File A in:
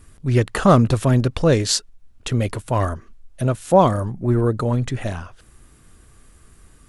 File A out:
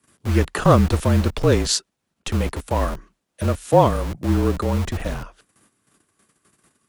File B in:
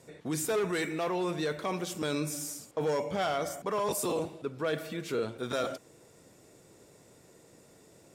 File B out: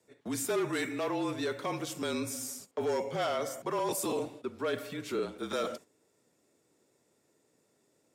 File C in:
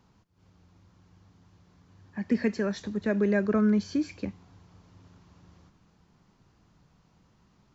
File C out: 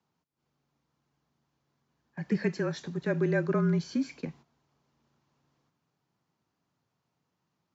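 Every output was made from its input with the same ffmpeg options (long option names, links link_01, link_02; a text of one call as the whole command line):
ffmpeg -i in.wav -filter_complex "[0:a]agate=range=-12dB:threshold=-46dB:ratio=16:detection=peak,acrossover=split=160|1000|1700[link_01][link_02][link_03][link_04];[link_01]acrusher=bits=4:mix=0:aa=0.000001[link_05];[link_05][link_02][link_03][link_04]amix=inputs=4:normalize=0,afreqshift=-36,volume=-1dB" out.wav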